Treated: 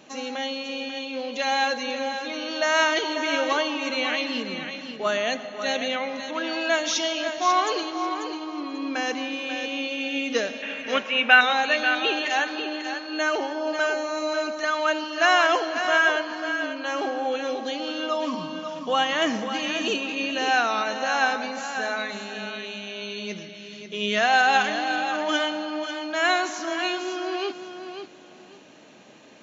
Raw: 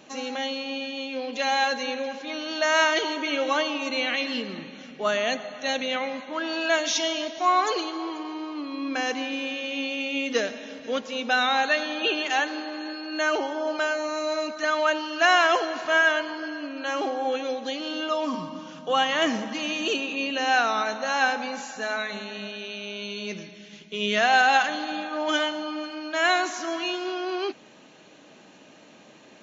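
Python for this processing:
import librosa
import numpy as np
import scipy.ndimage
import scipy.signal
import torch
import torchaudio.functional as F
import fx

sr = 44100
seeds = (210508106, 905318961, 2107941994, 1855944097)

y = fx.curve_eq(x, sr, hz=(450.0, 2600.0, 4400.0), db=(0, 14, -8), at=(10.62, 11.41))
y = fx.echo_feedback(y, sr, ms=541, feedback_pct=21, wet_db=-8.5)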